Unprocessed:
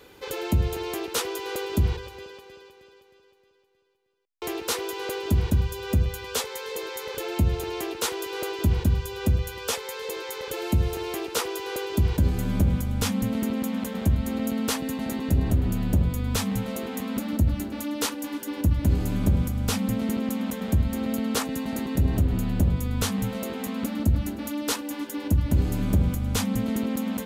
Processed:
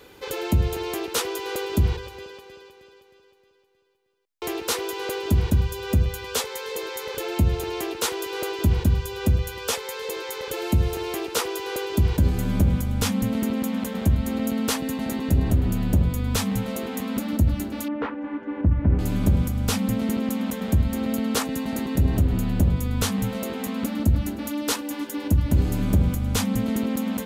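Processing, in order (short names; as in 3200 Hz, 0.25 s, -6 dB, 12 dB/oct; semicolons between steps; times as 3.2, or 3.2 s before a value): 17.88–18.99 LPF 2000 Hz 24 dB/oct; gain +2 dB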